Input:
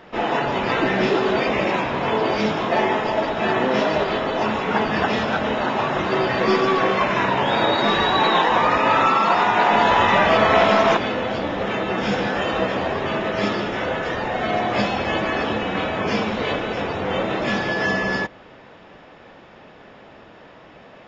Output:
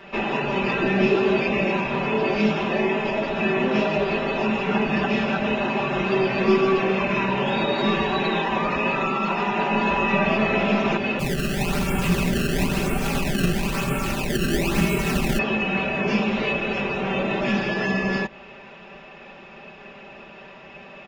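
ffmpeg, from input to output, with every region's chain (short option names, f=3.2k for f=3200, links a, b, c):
-filter_complex "[0:a]asettb=1/sr,asplit=3[a][b][c];[a]atrim=end=11.194[d];[b]atrim=start=11.19:end=15.39,asetpts=PTS-STARTPTS,afade=t=in:d=0.004:c=qsin,afade=t=out:st=4.196:d=0.004:c=qsin,acrusher=samples=19:mix=1:aa=0.000001:lfo=1:lforange=30.4:lforate=1,afreqshift=-380[e];[c]atrim=start=15.386[f];[d][e]acrossfade=d=0.004:c1=hsin:c2=qsin[g];[g][f]acrossfade=d=0.004:c1=qsin:c2=hsin,equalizer=f=2.6k:w=7.8:g=13,acrossover=split=420[h][i];[i]acompressor=threshold=-27dB:ratio=3[j];[h][j]amix=inputs=2:normalize=0,aecho=1:1:5.1:0.89,volume=-1.5dB"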